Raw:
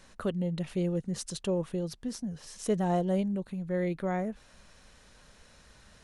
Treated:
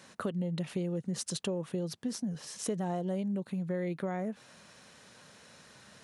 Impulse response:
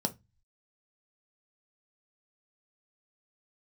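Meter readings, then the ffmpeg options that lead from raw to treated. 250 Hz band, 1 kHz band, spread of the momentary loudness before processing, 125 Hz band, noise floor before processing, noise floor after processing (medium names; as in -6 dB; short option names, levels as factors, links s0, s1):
-3.0 dB, -5.0 dB, 9 LU, -3.0 dB, -58 dBFS, -57 dBFS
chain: -filter_complex "[0:a]highpass=f=110:w=0.5412,highpass=f=110:w=1.3066,asplit=2[s0][s1];[s1]alimiter=level_in=1.12:limit=0.0631:level=0:latency=1,volume=0.891,volume=0.794[s2];[s0][s2]amix=inputs=2:normalize=0,acompressor=threshold=0.0398:ratio=6,volume=0.794"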